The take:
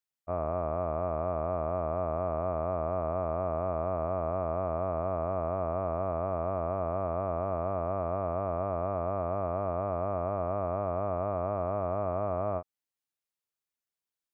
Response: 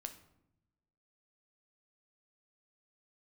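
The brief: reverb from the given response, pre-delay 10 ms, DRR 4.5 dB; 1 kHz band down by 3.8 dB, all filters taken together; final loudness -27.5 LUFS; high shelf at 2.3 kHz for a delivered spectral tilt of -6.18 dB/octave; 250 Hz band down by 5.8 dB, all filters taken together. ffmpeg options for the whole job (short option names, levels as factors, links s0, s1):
-filter_complex "[0:a]equalizer=f=250:t=o:g=-8.5,equalizer=f=1000:t=o:g=-6.5,highshelf=f=2300:g=8,asplit=2[s0][s1];[1:a]atrim=start_sample=2205,adelay=10[s2];[s1][s2]afir=irnorm=-1:irlink=0,volume=0.891[s3];[s0][s3]amix=inputs=2:normalize=0,volume=1.88"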